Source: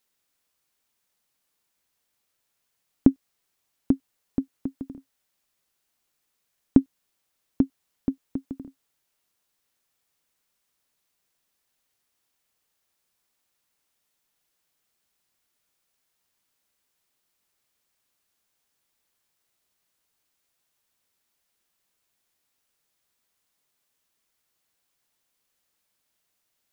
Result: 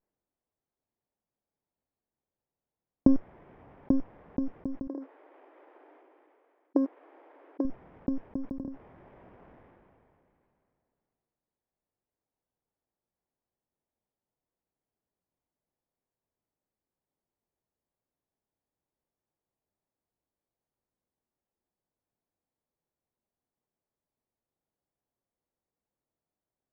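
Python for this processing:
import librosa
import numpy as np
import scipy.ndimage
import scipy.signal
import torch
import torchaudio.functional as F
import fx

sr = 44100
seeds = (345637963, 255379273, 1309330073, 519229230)

y = fx.lower_of_two(x, sr, delay_ms=0.39)
y = fx.brickwall_highpass(y, sr, low_hz=270.0, at=(4.87, 7.65))
y = (np.kron(scipy.signal.resample_poly(y, 1, 8), np.eye(8)[0]) * 8)[:len(y)]
y = scipy.signal.sosfilt(scipy.signal.butter(4, 1300.0, 'lowpass', fs=sr, output='sos'), y)
y = fx.sustainer(y, sr, db_per_s=21.0)
y = F.gain(torch.from_numpy(y), -4.0).numpy()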